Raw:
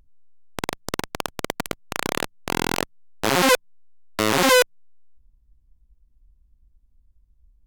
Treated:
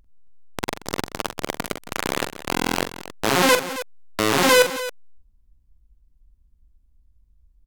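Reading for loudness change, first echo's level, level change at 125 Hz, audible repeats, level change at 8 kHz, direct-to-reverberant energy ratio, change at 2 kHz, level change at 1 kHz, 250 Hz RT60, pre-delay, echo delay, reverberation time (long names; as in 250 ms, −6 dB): +0.5 dB, −8.5 dB, +0.5 dB, 3, +0.5 dB, no reverb audible, +1.0 dB, +1.0 dB, no reverb audible, no reverb audible, 44 ms, no reverb audible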